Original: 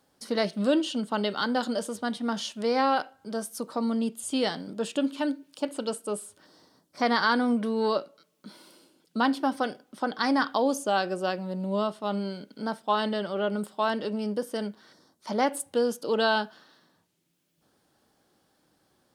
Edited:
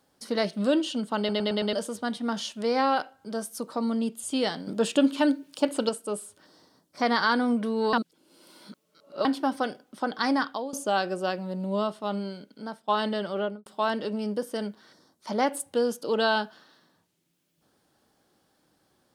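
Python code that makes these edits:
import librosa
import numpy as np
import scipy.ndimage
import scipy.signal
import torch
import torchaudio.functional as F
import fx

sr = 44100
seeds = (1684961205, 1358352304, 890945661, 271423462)

y = fx.studio_fade_out(x, sr, start_s=13.38, length_s=0.28)
y = fx.edit(y, sr, fx.stutter_over(start_s=1.18, slice_s=0.11, count=5),
    fx.clip_gain(start_s=4.67, length_s=1.22, db=5.5),
    fx.reverse_span(start_s=7.93, length_s=1.32),
    fx.fade_out_to(start_s=10.32, length_s=0.41, floor_db=-16.0),
    fx.fade_out_to(start_s=12.0, length_s=0.88, floor_db=-8.5), tone=tone)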